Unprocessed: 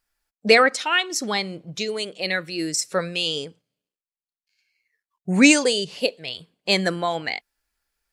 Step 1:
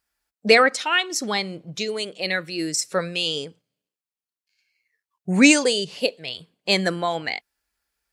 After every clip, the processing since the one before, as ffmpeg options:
ffmpeg -i in.wav -af "highpass=42" out.wav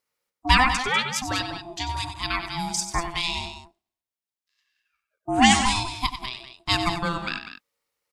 ffmpeg -i in.wav -filter_complex "[0:a]aeval=exprs='val(0)*sin(2*PI*510*n/s)':channel_layout=same,asplit=2[link_01][link_02];[link_02]aecho=0:1:93.29|195.3:0.316|0.282[link_03];[link_01][link_03]amix=inputs=2:normalize=0" out.wav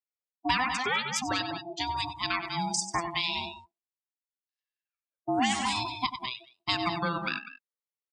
ffmpeg -i in.wav -af "afftdn=noise_reduction=24:noise_floor=-35,highpass=140,acompressor=threshold=-25dB:ratio=4" out.wav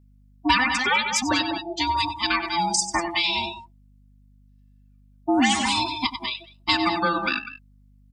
ffmpeg -i in.wav -af "aecho=1:1:3.4:0.95,aeval=exprs='val(0)+0.00126*(sin(2*PI*50*n/s)+sin(2*PI*2*50*n/s)/2+sin(2*PI*3*50*n/s)/3+sin(2*PI*4*50*n/s)/4+sin(2*PI*5*50*n/s)/5)':channel_layout=same,volume=4.5dB" out.wav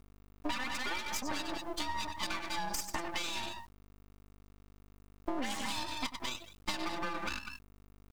ffmpeg -i in.wav -af "acrusher=bits=7:dc=4:mix=0:aa=0.000001,acompressor=threshold=-29dB:ratio=6,aeval=exprs='max(val(0),0)':channel_layout=same,volume=-1dB" out.wav

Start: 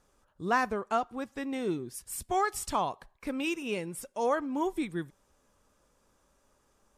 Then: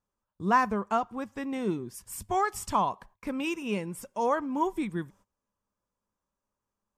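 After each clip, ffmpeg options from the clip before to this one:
ffmpeg -i in.wav -af "agate=range=-20dB:threshold=-57dB:ratio=16:detection=peak,equalizer=frequency=100:width_type=o:width=0.33:gain=9,equalizer=frequency=200:width_type=o:width=0.33:gain=9,equalizer=frequency=1000:width_type=o:width=0.33:gain=7,equalizer=frequency=4000:width_type=o:width=0.33:gain=-5,equalizer=frequency=10000:width_type=o:width=0.33:gain=-4" out.wav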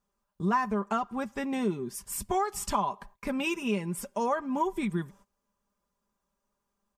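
ffmpeg -i in.wav -af "aecho=1:1:5:0.57,acompressor=threshold=-30dB:ratio=3,volume=3.5dB" out.wav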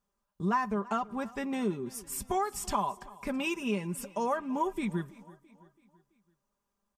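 ffmpeg -i in.wav -af "aecho=1:1:332|664|996|1328:0.0891|0.0437|0.0214|0.0105,volume=-2dB" out.wav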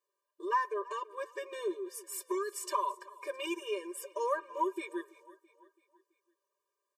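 ffmpeg -i in.wav -af "afftfilt=real='re*eq(mod(floor(b*sr/1024/310),2),1)':imag='im*eq(mod(floor(b*sr/1024/310),2),1)':win_size=1024:overlap=0.75" out.wav

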